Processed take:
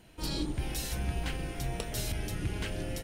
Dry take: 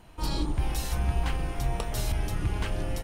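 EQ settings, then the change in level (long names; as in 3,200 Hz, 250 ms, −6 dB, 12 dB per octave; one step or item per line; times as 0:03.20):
low-shelf EQ 86 Hz −10.5 dB
parametric band 940 Hz −9.5 dB 0.95 octaves
notch filter 1,200 Hz, Q 14
0.0 dB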